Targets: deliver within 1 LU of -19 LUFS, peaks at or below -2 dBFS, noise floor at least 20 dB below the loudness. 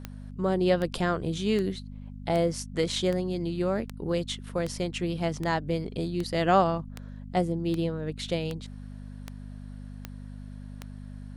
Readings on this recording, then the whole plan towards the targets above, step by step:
clicks found 15; hum 50 Hz; highest harmonic 250 Hz; hum level -38 dBFS; loudness -28.5 LUFS; peak level -10.0 dBFS; loudness target -19.0 LUFS
-> de-click; de-hum 50 Hz, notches 5; trim +9.5 dB; peak limiter -2 dBFS

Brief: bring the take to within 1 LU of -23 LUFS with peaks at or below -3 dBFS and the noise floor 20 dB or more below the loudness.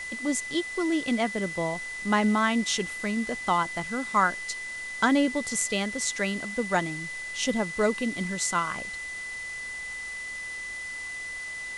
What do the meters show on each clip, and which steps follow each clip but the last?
steady tone 2 kHz; tone level -34 dBFS; noise floor -37 dBFS; noise floor target -48 dBFS; loudness -28.0 LUFS; peak level -10.0 dBFS; loudness target -23.0 LUFS
-> band-stop 2 kHz, Q 30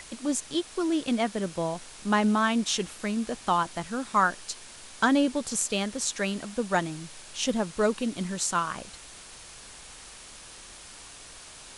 steady tone not found; noise floor -47 dBFS; noise floor target -48 dBFS
-> noise reduction 6 dB, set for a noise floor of -47 dBFS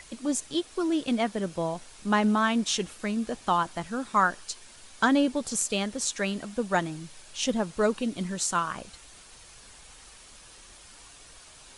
noise floor -51 dBFS; loudness -28.0 LUFS; peak level -10.5 dBFS; loudness target -23.0 LUFS
-> trim +5 dB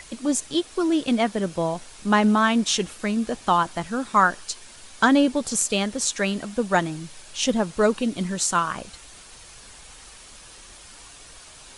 loudness -23.0 LUFS; peak level -5.5 dBFS; noise floor -46 dBFS

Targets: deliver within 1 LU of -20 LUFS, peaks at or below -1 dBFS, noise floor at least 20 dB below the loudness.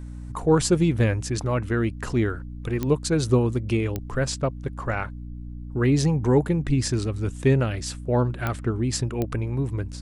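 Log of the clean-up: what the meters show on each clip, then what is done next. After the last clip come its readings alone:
clicks found 4; hum 60 Hz; highest harmonic 300 Hz; hum level -34 dBFS; loudness -24.5 LUFS; peak level -7.5 dBFS; loudness target -20.0 LUFS
-> de-click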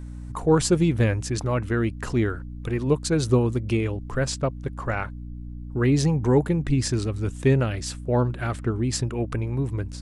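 clicks found 0; hum 60 Hz; highest harmonic 300 Hz; hum level -34 dBFS
-> hum notches 60/120/180/240/300 Hz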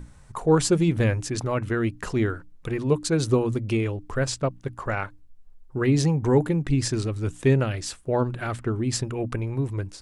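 hum not found; loudness -25.0 LUFS; peak level -8.5 dBFS; loudness target -20.0 LUFS
-> trim +5 dB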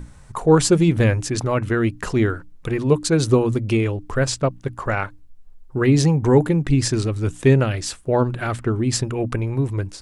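loudness -20.0 LUFS; peak level -3.5 dBFS; noise floor -45 dBFS

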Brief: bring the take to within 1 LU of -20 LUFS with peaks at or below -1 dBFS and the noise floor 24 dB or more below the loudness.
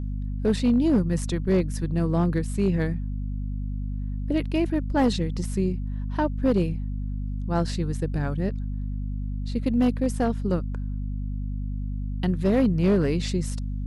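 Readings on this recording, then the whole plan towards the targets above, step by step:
clipped samples 0.6%; clipping level -14.5 dBFS; hum 50 Hz; highest harmonic 250 Hz; hum level -27 dBFS; loudness -26.0 LUFS; peak level -14.5 dBFS; loudness target -20.0 LUFS
-> clip repair -14.5 dBFS; de-hum 50 Hz, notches 5; trim +6 dB

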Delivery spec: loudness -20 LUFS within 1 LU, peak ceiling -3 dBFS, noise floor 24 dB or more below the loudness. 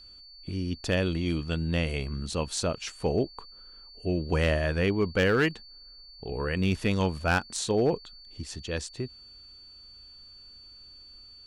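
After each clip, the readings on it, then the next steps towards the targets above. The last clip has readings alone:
clipped samples 0.2%; clipping level -16.5 dBFS; steady tone 4.5 kHz; tone level -48 dBFS; loudness -29.0 LUFS; peak level -16.5 dBFS; loudness target -20.0 LUFS
-> clip repair -16.5 dBFS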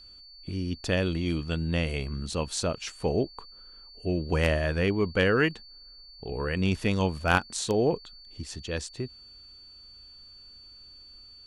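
clipped samples 0.0%; steady tone 4.5 kHz; tone level -48 dBFS
-> band-stop 4.5 kHz, Q 30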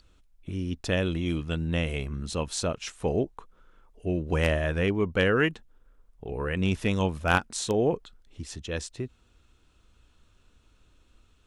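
steady tone not found; loudness -28.5 LUFS; peak level -7.5 dBFS; loudness target -20.0 LUFS
-> trim +8.5 dB; peak limiter -3 dBFS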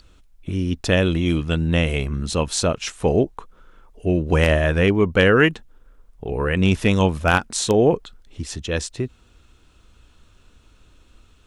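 loudness -20.5 LUFS; peak level -3.0 dBFS; noise floor -55 dBFS

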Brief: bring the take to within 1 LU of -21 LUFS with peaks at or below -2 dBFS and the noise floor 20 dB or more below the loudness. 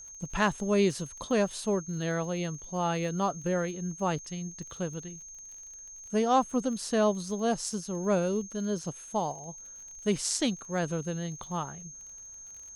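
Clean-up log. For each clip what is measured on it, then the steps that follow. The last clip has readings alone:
tick rate 35 per s; steady tone 6.4 kHz; tone level -44 dBFS; loudness -30.5 LUFS; peak level -12.5 dBFS; loudness target -21.0 LUFS
-> de-click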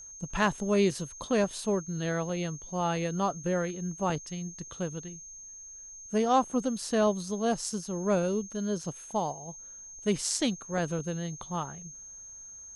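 tick rate 0.16 per s; steady tone 6.4 kHz; tone level -44 dBFS
-> band-stop 6.4 kHz, Q 30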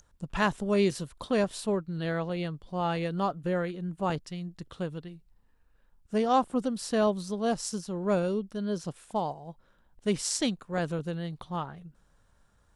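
steady tone not found; loudness -30.5 LUFS; peak level -12.5 dBFS; loudness target -21.0 LUFS
-> trim +9.5 dB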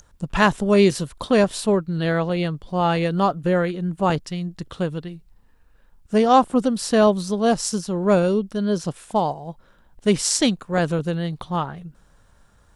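loudness -21.0 LUFS; peak level -3.0 dBFS; noise floor -57 dBFS

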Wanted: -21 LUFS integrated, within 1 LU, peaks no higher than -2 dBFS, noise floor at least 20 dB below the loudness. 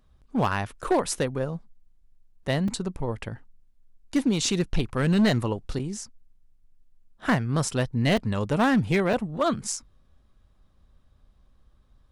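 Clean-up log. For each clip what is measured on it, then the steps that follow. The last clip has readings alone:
clipped samples 0.8%; clipping level -16.0 dBFS; dropouts 5; longest dropout 3.7 ms; loudness -26.0 LUFS; peak level -16.0 dBFS; loudness target -21.0 LUFS
-> clip repair -16 dBFS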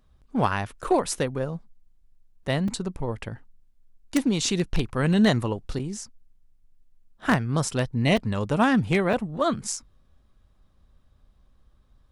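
clipped samples 0.0%; dropouts 5; longest dropout 3.7 ms
-> interpolate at 0.84/2.68/5.79/8.17/9.13 s, 3.7 ms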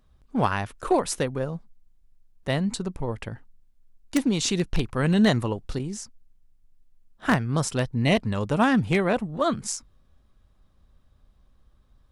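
dropouts 0; loudness -25.5 LUFS; peak level -7.0 dBFS; loudness target -21.0 LUFS
-> trim +4.5 dB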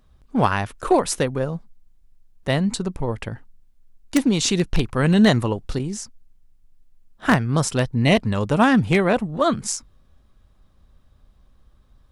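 loudness -21.0 LUFS; peak level -2.5 dBFS; noise floor -56 dBFS

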